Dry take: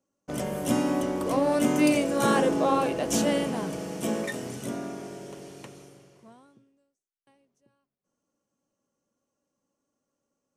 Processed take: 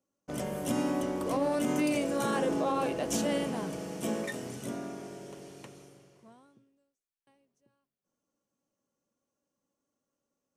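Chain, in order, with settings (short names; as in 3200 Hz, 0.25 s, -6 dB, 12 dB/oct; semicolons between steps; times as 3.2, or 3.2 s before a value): limiter -16.5 dBFS, peak gain reduction 5.5 dB; gain -4 dB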